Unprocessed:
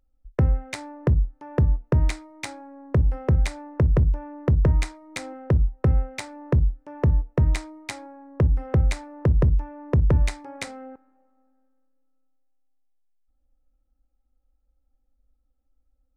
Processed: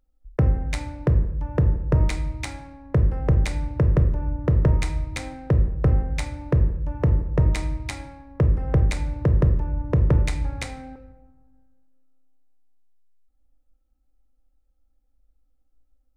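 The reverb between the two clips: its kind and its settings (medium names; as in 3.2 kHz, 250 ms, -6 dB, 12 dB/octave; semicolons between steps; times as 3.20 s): simulated room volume 320 m³, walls mixed, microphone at 0.48 m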